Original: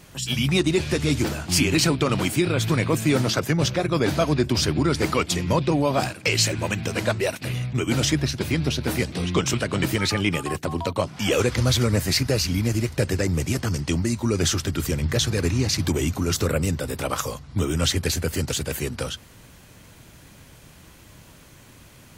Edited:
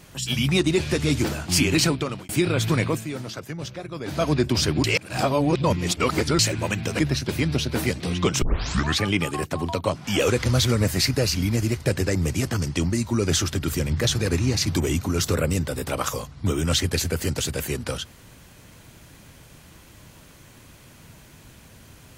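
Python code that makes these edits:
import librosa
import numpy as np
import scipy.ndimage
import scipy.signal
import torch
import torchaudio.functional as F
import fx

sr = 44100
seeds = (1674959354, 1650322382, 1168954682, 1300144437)

y = fx.edit(x, sr, fx.fade_out_span(start_s=1.84, length_s=0.45),
    fx.fade_down_up(start_s=2.84, length_s=1.44, db=-11.5, fade_s=0.23),
    fx.reverse_span(start_s=4.84, length_s=1.55),
    fx.cut(start_s=6.99, length_s=1.12),
    fx.tape_start(start_s=9.54, length_s=0.6), tone=tone)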